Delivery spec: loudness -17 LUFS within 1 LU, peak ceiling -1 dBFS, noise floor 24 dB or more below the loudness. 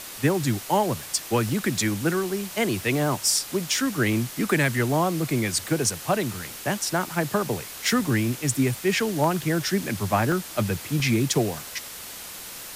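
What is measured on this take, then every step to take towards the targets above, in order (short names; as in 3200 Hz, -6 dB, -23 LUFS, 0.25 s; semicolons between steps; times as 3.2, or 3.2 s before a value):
dropouts 7; longest dropout 1.8 ms; noise floor -39 dBFS; noise floor target -49 dBFS; loudness -24.5 LUFS; peak -9.5 dBFS; loudness target -17.0 LUFS
-> interpolate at 1.49/3.37/5.86/7.84/9.24/10.32/11, 1.8 ms; noise print and reduce 10 dB; gain +7.5 dB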